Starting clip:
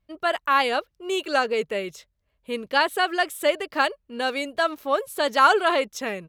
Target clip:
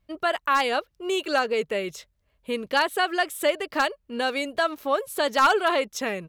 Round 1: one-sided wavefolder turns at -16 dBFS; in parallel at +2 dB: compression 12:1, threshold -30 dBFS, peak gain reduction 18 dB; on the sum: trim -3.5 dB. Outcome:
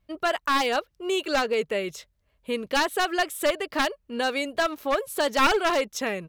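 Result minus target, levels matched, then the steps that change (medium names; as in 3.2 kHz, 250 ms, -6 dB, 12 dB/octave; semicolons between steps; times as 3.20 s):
one-sided wavefolder: distortion +14 dB
change: one-sided wavefolder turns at -9.5 dBFS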